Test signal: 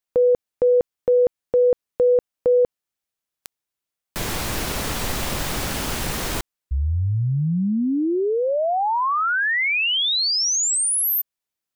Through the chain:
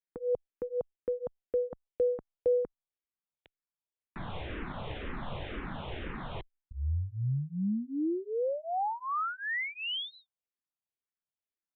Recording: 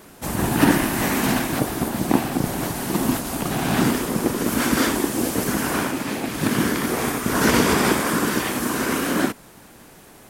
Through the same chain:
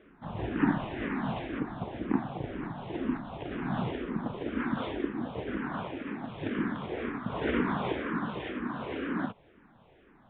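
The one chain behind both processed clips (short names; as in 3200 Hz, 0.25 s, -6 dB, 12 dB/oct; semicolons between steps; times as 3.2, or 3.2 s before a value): high shelf 2400 Hz -7.5 dB; downsampling 8000 Hz; endless phaser -2 Hz; gain -8 dB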